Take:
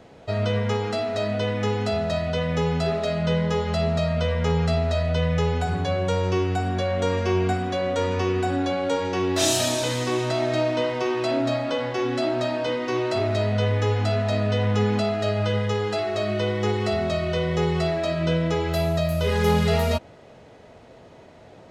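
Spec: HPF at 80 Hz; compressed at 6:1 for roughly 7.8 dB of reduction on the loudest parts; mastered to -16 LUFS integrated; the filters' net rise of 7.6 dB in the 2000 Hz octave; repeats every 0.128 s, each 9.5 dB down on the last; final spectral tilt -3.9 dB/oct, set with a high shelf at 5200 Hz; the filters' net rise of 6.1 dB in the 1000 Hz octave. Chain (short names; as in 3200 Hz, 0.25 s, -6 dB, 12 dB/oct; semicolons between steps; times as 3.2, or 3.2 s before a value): HPF 80 Hz; bell 1000 Hz +6.5 dB; bell 2000 Hz +7 dB; high shelf 5200 Hz +3.5 dB; compressor 6:1, threshold -23 dBFS; feedback echo 0.128 s, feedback 33%, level -9.5 dB; gain +10 dB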